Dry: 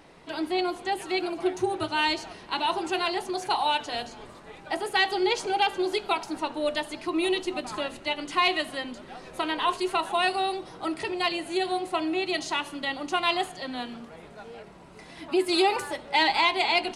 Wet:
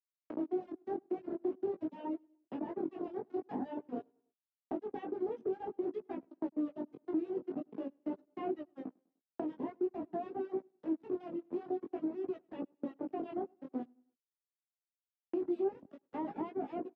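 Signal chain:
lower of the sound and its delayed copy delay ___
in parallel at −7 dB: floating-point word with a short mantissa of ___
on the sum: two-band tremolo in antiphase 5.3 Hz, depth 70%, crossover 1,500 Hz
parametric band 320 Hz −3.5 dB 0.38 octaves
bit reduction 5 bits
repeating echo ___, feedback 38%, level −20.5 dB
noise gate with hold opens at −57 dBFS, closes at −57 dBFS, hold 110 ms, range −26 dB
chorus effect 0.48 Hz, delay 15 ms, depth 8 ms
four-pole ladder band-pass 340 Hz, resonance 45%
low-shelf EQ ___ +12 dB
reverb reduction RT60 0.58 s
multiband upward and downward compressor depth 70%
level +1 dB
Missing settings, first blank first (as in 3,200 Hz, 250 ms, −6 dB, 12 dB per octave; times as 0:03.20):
0.35 ms, 2 bits, 100 ms, 500 Hz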